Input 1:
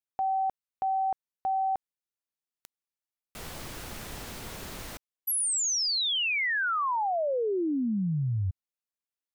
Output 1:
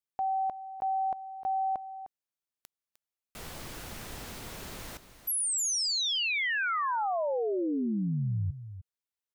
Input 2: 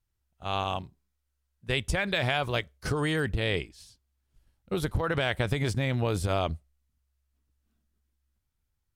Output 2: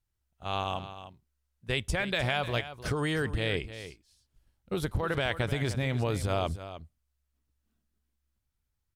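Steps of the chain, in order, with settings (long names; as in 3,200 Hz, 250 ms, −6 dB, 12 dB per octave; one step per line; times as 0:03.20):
single-tap delay 305 ms −12.5 dB
level −2 dB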